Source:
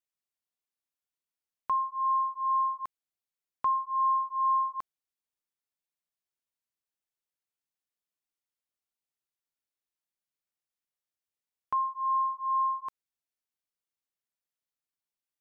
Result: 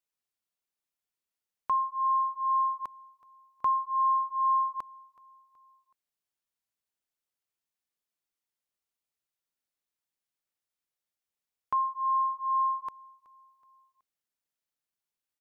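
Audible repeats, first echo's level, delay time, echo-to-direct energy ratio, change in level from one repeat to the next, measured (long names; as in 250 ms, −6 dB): 2, −23.0 dB, 374 ms, −22.0 dB, −6.5 dB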